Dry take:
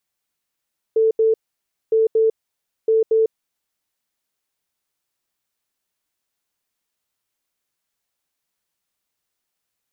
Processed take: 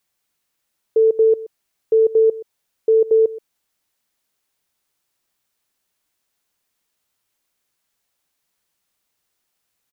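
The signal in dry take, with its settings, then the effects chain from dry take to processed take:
beeps in groups sine 444 Hz, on 0.15 s, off 0.08 s, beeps 2, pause 0.58 s, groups 3, −12.5 dBFS
single-tap delay 126 ms −20 dB
in parallel at −2 dB: brickwall limiter −19 dBFS

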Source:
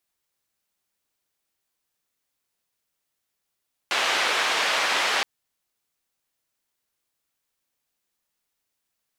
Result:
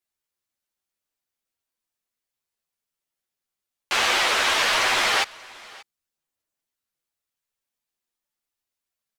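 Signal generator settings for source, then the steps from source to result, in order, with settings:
band-limited noise 550–3,000 Hz, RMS −23.5 dBFS 1.32 s
leveller curve on the samples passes 2
multi-voice chorus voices 6, 1.3 Hz, delay 11 ms, depth 3.1 ms
single-tap delay 583 ms −22.5 dB

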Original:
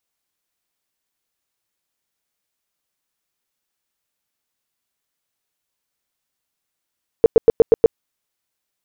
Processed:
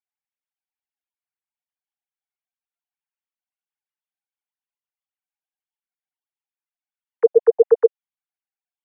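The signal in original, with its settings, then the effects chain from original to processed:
tone bursts 456 Hz, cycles 9, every 0.12 s, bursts 6, −4.5 dBFS
three sine waves on the formant tracks

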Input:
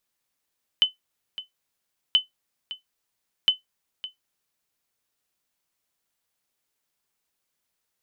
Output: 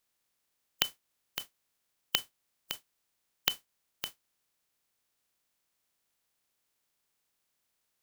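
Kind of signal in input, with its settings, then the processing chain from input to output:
ping with an echo 3,030 Hz, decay 0.14 s, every 1.33 s, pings 3, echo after 0.56 s, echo −16 dB −9.5 dBFS
compressing power law on the bin magnitudes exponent 0.36
downward compressor 4 to 1, threshold −26 dBFS

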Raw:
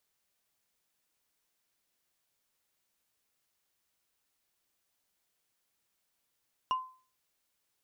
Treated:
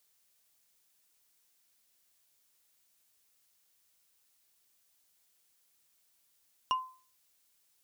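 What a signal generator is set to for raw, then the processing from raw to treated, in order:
struck wood, lowest mode 1,030 Hz, decay 0.40 s, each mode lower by 10 dB, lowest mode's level −24 dB
high-shelf EQ 3,200 Hz +9.5 dB

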